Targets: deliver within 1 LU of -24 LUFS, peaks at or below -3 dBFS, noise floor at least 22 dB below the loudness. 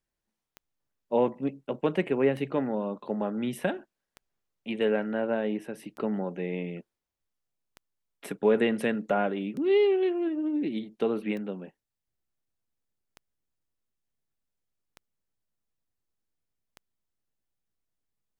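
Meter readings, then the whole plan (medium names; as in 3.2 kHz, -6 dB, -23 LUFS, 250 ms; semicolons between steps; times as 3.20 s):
clicks found 10; loudness -28.5 LUFS; peak level -12.0 dBFS; loudness target -24.0 LUFS
-> de-click; trim +4.5 dB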